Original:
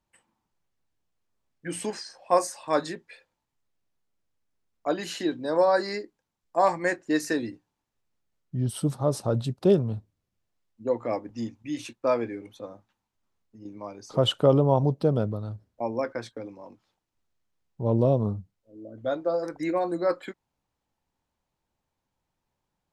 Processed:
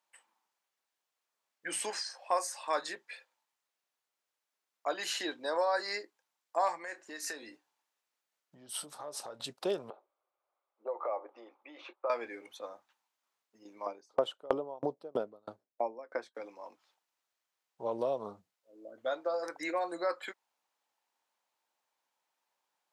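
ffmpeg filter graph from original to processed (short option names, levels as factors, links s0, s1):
-filter_complex "[0:a]asettb=1/sr,asplit=3[s0][s1][s2];[s0]atrim=end=6.784[s3];[s1]atrim=start=6.78:end=9.4,asetpts=PTS-STARTPTS,afade=t=in:d=0.004:c=qsin,afade=t=out:st=2.616:d=0.004:c=qsin,acompressor=threshold=0.02:ratio=8:attack=3.2:release=140:knee=1:detection=peak,asplit=2[s4][s5];[s5]adelay=27,volume=0.224[s6];[s4][s6]amix=inputs=2:normalize=0,atrim=end_sample=115542[s7];[s2]atrim=start=9.396[s8];[s3][s7]acrossfade=d=0.004:c1=hsin:c2=qsin[s9];[s9][s8]acrossfade=d=0.004:c1=qsin:c2=hsin,asettb=1/sr,asplit=3[s10][s11][s12];[s10]atrim=end=9.904[s13];[s11]atrim=start=9.9:end=12.1,asetpts=PTS-STARTPTS,afade=t=in:d=0.004:c=qsin,afade=t=out:st=2.196:d=0.004:c=qsin,acompressor=threshold=0.0178:ratio=4:attack=3.2:release=140:knee=1:detection=peak,highpass=f=350:w=0.5412,highpass=f=350:w=1.3066,equalizer=f=370:t=q:w=4:g=7,equalizer=f=570:t=q:w=4:g=10,equalizer=f=810:t=q:w=4:g=7,equalizer=f=1200:t=q:w=4:g=9,equalizer=f=1800:t=q:w=4:g=-9,equalizer=f=2800:t=q:w=4:g=-8,lowpass=f=2900:w=0.5412,lowpass=f=2900:w=1.3066[s14];[s12]atrim=start=12.096[s15];[s13][s14]acrossfade=d=0.004:c1=hsin:c2=qsin[s16];[s16][s15]acrossfade=d=0.004:c1=qsin:c2=hsin,asettb=1/sr,asplit=3[s17][s18][s19];[s17]atrim=end=13.864[s20];[s18]atrim=start=13.86:end=16.35,asetpts=PTS-STARTPTS,afade=t=in:d=0.004:c=qsin,afade=t=out:st=2.486:d=0.004:c=qsin,equalizer=f=310:w=0.38:g=12,aeval=exprs='val(0)*pow(10,-36*if(lt(mod(3.1*n/s,1),2*abs(3.1)/1000),1-mod(3.1*n/s,1)/(2*abs(3.1)/1000),(mod(3.1*n/s,1)-2*abs(3.1)/1000)/(1-2*abs(3.1)/1000))/20)':c=same[s21];[s19]atrim=start=16.346[s22];[s20][s21]acrossfade=d=0.004:c1=hsin:c2=qsin[s23];[s23][s22]acrossfade=d=0.004:c1=qsin:c2=hsin,highpass=710,acompressor=threshold=0.02:ratio=2,volume=1.26"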